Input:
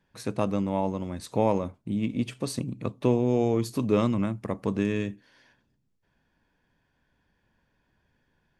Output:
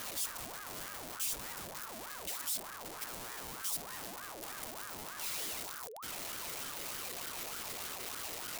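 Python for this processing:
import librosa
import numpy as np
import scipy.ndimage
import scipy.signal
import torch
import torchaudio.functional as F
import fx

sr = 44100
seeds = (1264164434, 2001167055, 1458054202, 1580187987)

y = np.sign(x) * np.sqrt(np.mean(np.square(x)))
y = F.preemphasis(torch.from_numpy(y), 0.8).numpy()
y = fx.ring_lfo(y, sr, carrier_hz=940.0, swing_pct=55, hz=3.3)
y = y * librosa.db_to_amplitude(-2.0)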